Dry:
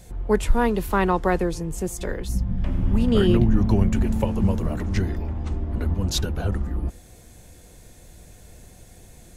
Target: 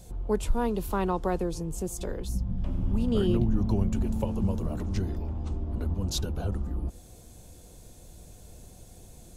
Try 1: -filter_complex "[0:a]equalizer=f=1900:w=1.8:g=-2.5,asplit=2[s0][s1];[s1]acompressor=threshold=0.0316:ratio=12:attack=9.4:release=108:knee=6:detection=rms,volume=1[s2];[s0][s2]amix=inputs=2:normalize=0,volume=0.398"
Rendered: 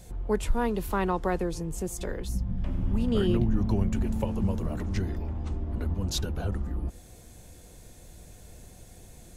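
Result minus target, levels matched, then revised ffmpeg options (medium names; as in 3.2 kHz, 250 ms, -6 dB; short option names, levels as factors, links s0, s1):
2 kHz band +5.0 dB
-filter_complex "[0:a]equalizer=f=1900:w=1.8:g=-10,asplit=2[s0][s1];[s1]acompressor=threshold=0.0316:ratio=12:attack=9.4:release=108:knee=6:detection=rms,volume=1[s2];[s0][s2]amix=inputs=2:normalize=0,volume=0.398"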